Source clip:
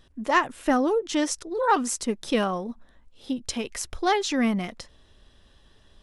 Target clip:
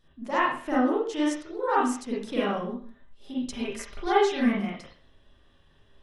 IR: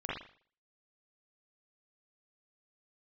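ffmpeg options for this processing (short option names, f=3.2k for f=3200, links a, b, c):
-filter_complex "[0:a]asettb=1/sr,asplit=3[a][b][c];[a]atrim=end=2.484[d];[b]atrim=start=2.48:end=4.49,asetpts=PTS-STARTPTS,afade=t=in:d=0.004:c=qsin,afade=t=out:st=2.006:d=0.004:c=qsin,aecho=1:1:5:0.65,atrim=end_sample=88641[e];[c]atrim=start=4.486[f];[d][e]acrossfade=d=0.004:c1=hsin:c2=qsin[g];[g][f]acrossfade=d=0.004:c1=qsin:c2=hsin[h];[1:a]atrim=start_sample=2205,afade=t=out:st=0.39:d=0.01,atrim=end_sample=17640[i];[h][i]afir=irnorm=-1:irlink=0,volume=-7dB"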